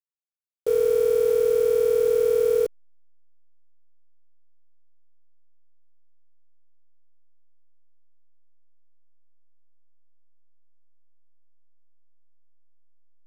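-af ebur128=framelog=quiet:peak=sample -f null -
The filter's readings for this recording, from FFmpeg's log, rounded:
Integrated loudness:
  I:         -21.4 LUFS
  Threshold: -31.6 LUFS
Loudness range:
  LRA:         8.9 LU
  Threshold: -44.5 LUFS
  LRA low:   -31.4 LUFS
  LRA high:  -22.5 LUFS
Sample peak:
  Peak:      -13.4 dBFS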